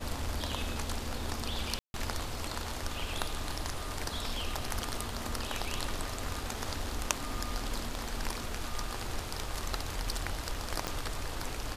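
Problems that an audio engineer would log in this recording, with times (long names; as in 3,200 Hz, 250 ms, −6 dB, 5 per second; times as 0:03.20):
0:01.79–0:01.94: drop-out 151 ms
0:10.87: click −17 dBFS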